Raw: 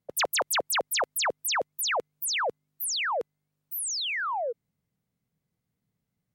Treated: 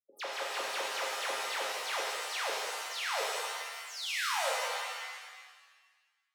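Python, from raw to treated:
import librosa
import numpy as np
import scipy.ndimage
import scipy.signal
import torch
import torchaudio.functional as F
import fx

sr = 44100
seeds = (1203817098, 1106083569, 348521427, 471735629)

y = fx.bin_expand(x, sr, power=2.0)
y = fx.tilt_eq(y, sr, slope=2.0)
y = fx.level_steps(y, sr, step_db=12)
y = fx.air_absorb(y, sr, metres=220.0)
y = 10.0 ** (-33.0 / 20.0) * np.tanh(y / 10.0 ** (-33.0 / 20.0))
y = scipy.signal.sosfilt(scipy.signal.butter(4, 260.0, 'highpass', fs=sr, output='sos'), y)
y = fx.rev_shimmer(y, sr, seeds[0], rt60_s=1.4, semitones=7, shimmer_db=-2, drr_db=-4.0)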